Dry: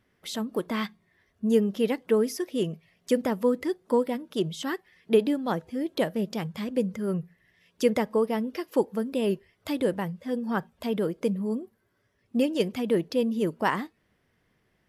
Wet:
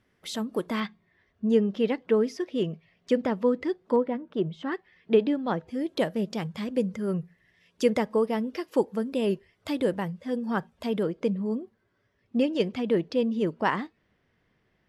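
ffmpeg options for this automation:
-af "asetnsamples=n=441:p=0,asendcmd='0.8 lowpass f 4200;3.96 lowpass f 1900;4.72 lowpass f 3700;5.68 lowpass f 9100;11.03 lowpass f 5000',lowpass=11k"

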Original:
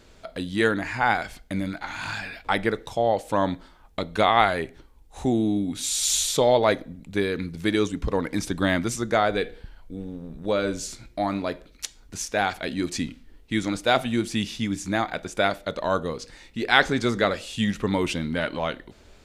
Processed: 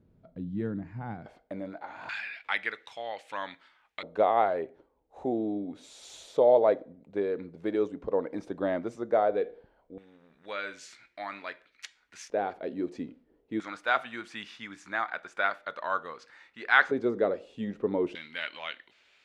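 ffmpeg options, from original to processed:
-af "asetnsamples=n=441:p=0,asendcmd='1.26 bandpass f 580;2.09 bandpass f 2200;4.03 bandpass f 540;9.98 bandpass f 1900;12.3 bandpass f 460;13.6 bandpass f 1400;16.91 bandpass f 440;18.15 bandpass f 2500',bandpass=f=150:t=q:w=1.8:csg=0"

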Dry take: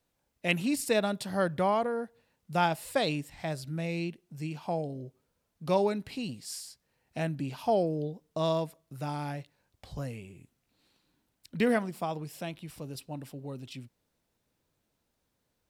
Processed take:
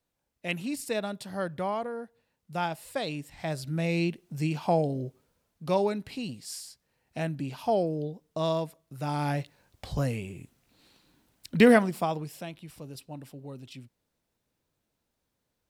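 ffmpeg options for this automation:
-af "volume=15.5dB,afade=t=in:st=3.1:d=1.13:silence=0.266073,afade=t=out:st=5.05:d=0.59:silence=0.446684,afade=t=in:st=8.97:d=0.41:silence=0.398107,afade=t=out:st=11.66:d=0.8:silence=0.298538"

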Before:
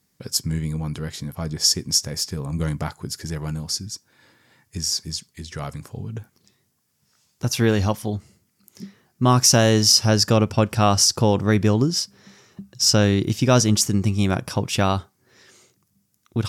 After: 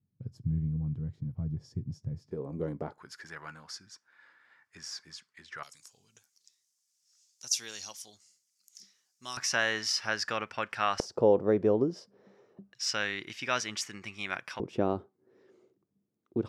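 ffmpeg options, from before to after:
-af "asetnsamples=n=441:p=0,asendcmd='2.31 bandpass f 420;2.98 bandpass f 1500;5.63 bandpass f 6300;9.37 bandpass f 1800;11 bandpass f 490;12.73 bandpass f 2000;14.6 bandpass f 380',bandpass=f=110:t=q:w=2.1:csg=0"

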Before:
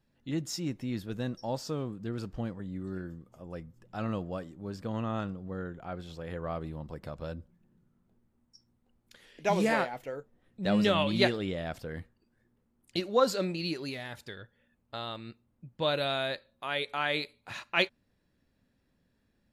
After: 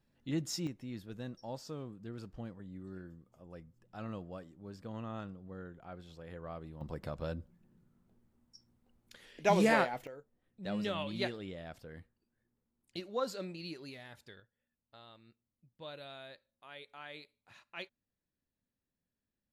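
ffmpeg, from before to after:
-af "asetnsamples=n=441:p=0,asendcmd='0.67 volume volume -9dB;6.81 volume volume 0dB;10.07 volume volume -10.5dB;14.4 volume volume -18dB',volume=-2dB"

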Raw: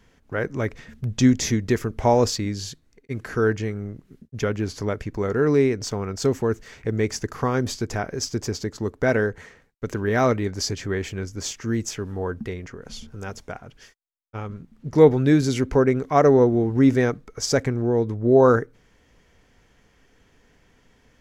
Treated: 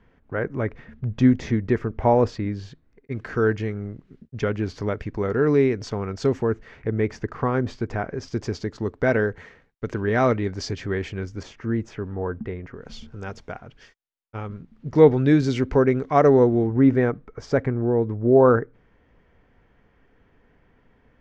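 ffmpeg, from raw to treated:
-af "asetnsamples=n=441:p=0,asendcmd='3.12 lowpass f 3700;6.42 lowpass f 2300;8.28 lowpass f 3800;11.43 lowpass f 1900;12.74 lowpass f 4100;16.67 lowpass f 1900',lowpass=2k"

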